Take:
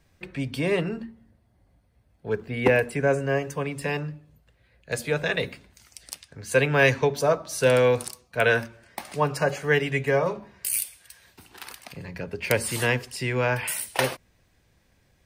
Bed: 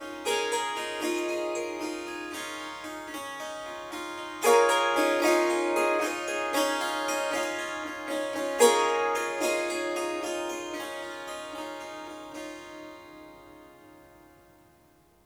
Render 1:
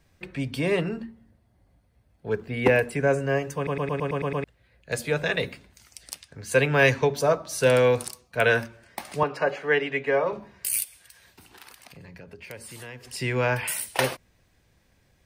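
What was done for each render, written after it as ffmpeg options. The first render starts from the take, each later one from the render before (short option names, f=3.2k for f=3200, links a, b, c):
-filter_complex "[0:a]asettb=1/sr,asplit=3[a][b][c];[a]atrim=end=9.234[d];[b]atrim=start=9.23:end=10.33,asetpts=PTS-STARTPTS,afade=t=in:d=0.004:c=qsin,afade=t=out:st=1.096:d=0.004:c=qsin,acrossover=split=220 4200:gain=0.112 1 0.112[e][f][g];[e][f][g]amix=inputs=3:normalize=0[h];[c]atrim=start=10.326[i];[d][h]acrossfade=d=0.004:c1=hsin:c2=qsin[j];[j][i]acrossfade=d=0.004:c1=qsin:c2=hsin,asettb=1/sr,asplit=3[k][l][m];[k]atrim=end=10.844[n];[l]atrim=start=10.84:end=13.05,asetpts=PTS-STARTPTS,afade=t=in:d=0.004:c=qsin,afade=t=out:st=2.206:d=0.004:c=qsin,acompressor=threshold=-46dB:ratio=2.5:attack=3.2:release=140:knee=1:detection=peak[o];[m]atrim=start=13.046[p];[n][o]acrossfade=d=0.004:c1=hsin:c2=qsin[q];[q][p]acrossfade=d=0.004:c1=qsin:c2=hsin,asplit=9[r][s][t][u][v][w][x][y][z];[r]atrim=end=3.672[aa];[s]atrim=start=3.558:end=3.672[ab];[t]atrim=start=3.558:end=3.672[ac];[u]atrim=start=3.558:end=3.672[ad];[v]atrim=start=3.558:end=3.672[ae];[w]atrim=start=3.558:end=3.672[af];[x]atrim=start=3.558:end=3.672[ag];[y]atrim=start=3.558:end=3.672[ah];[z]atrim=start=4.438[ai];[aa][ab]acrossfade=d=0.004:c1=hsin:c2=hsin[aj];[aj][ac]acrossfade=d=0.004:c1=hsin:c2=hsin[ak];[ak][ad]acrossfade=d=0.004:c1=hsin:c2=hsin[al];[al][ae]acrossfade=d=0.004:c1=hsin:c2=hsin[am];[am][af]acrossfade=d=0.004:c1=hsin:c2=hsin[an];[an][ag]acrossfade=d=0.004:c1=hsin:c2=hsin[ao];[ao][ah]acrossfade=d=0.004:c1=hsin:c2=hsin[ap];[ap][ai]acrossfade=d=0.004:c1=hsin:c2=hsin"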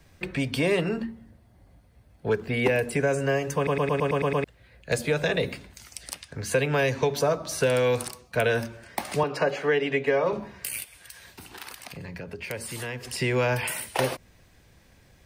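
-filter_complex "[0:a]asplit=2[a][b];[b]alimiter=limit=-15.5dB:level=0:latency=1:release=126,volume=2dB[c];[a][c]amix=inputs=2:normalize=0,acrossover=split=380|860|3000[d][e][f][g];[d]acompressor=threshold=-28dB:ratio=4[h];[e]acompressor=threshold=-26dB:ratio=4[i];[f]acompressor=threshold=-33dB:ratio=4[j];[g]acompressor=threshold=-34dB:ratio=4[k];[h][i][j][k]amix=inputs=4:normalize=0"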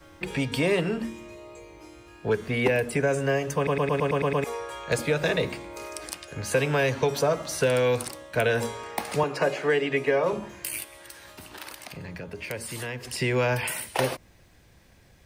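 -filter_complex "[1:a]volume=-14dB[a];[0:a][a]amix=inputs=2:normalize=0"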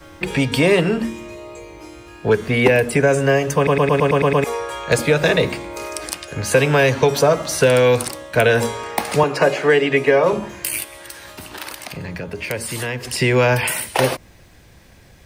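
-af "volume=9dB,alimiter=limit=-2dB:level=0:latency=1"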